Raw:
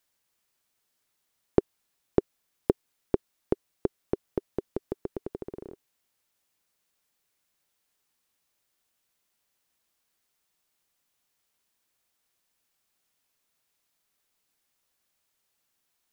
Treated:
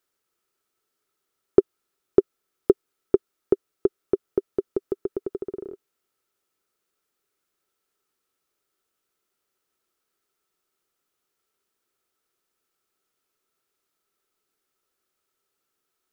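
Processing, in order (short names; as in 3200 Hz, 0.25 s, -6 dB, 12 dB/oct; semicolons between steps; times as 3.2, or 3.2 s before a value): small resonant body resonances 390/1300 Hz, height 13 dB, ringing for 25 ms; gain -3.5 dB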